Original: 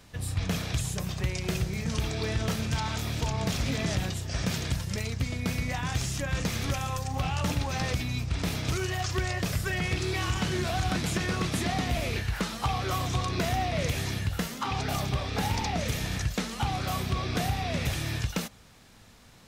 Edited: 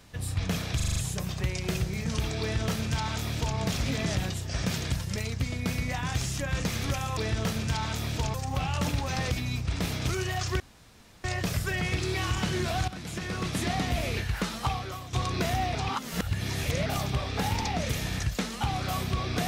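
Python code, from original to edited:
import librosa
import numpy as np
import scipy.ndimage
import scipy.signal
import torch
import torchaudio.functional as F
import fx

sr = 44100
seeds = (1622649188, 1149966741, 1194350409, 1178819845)

y = fx.edit(x, sr, fx.stutter(start_s=0.76, slice_s=0.04, count=6),
    fx.duplicate(start_s=2.2, length_s=1.17, to_s=6.97),
    fx.insert_room_tone(at_s=9.23, length_s=0.64),
    fx.fade_in_from(start_s=10.87, length_s=0.79, floor_db=-14.0),
    fx.fade_out_to(start_s=12.66, length_s=0.46, curve='qua', floor_db=-12.0),
    fx.reverse_span(start_s=13.74, length_s=1.11), tone=tone)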